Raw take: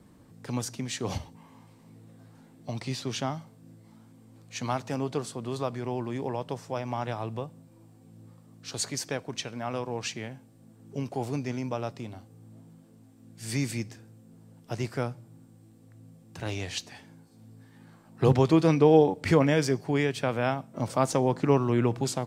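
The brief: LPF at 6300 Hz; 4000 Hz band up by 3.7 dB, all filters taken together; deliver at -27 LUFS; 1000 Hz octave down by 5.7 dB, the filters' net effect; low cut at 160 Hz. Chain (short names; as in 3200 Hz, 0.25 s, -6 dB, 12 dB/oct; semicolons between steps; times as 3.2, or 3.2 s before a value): HPF 160 Hz; LPF 6300 Hz; bell 1000 Hz -8 dB; bell 4000 Hz +6 dB; gain +3.5 dB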